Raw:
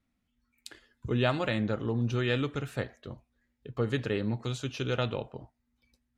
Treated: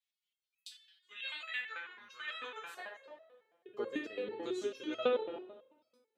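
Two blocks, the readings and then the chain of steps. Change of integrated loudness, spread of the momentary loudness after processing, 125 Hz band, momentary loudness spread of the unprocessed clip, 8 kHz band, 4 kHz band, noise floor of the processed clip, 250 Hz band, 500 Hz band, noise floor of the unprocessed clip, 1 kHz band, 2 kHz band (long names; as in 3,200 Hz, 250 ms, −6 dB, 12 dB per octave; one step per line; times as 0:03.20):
−8.5 dB, 20 LU, below −35 dB, 20 LU, −8.5 dB, −6.5 dB, below −85 dBFS, −12.5 dB, −5.5 dB, −79 dBFS, −7.5 dB, −5.0 dB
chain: high-pass filter sweep 3,200 Hz → 340 Hz, 0:00.81–0:03.96
spring reverb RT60 1.2 s, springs 42/57 ms, chirp 35 ms, DRR 4.5 dB
step-sequenced resonator 9.1 Hz 170–650 Hz
level +6 dB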